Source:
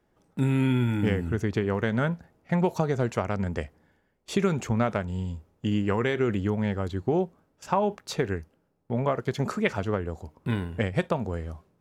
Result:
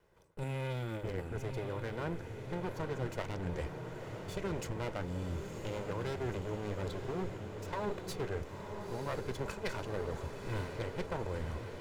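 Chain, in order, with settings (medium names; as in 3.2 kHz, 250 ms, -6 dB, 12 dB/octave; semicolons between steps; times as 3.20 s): comb filter that takes the minimum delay 2 ms; reverse; compression 12:1, threshold -36 dBFS, peak gain reduction 16 dB; reverse; echo that smears into a reverb 976 ms, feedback 67%, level -6.5 dB; trim +1.5 dB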